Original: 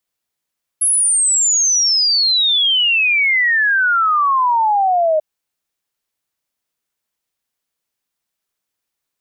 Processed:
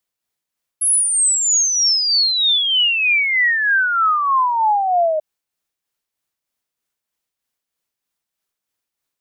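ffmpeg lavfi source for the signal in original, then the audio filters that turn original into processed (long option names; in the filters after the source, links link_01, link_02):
-f lavfi -i "aevalsrc='0.266*clip(min(t,4.39-t)/0.01,0,1)*sin(2*PI*11000*4.39/log(610/11000)*(exp(log(610/11000)*t/4.39)-1))':duration=4.39:sample_rate=44100"
-af "tremolo=f=3.2:d=0.4"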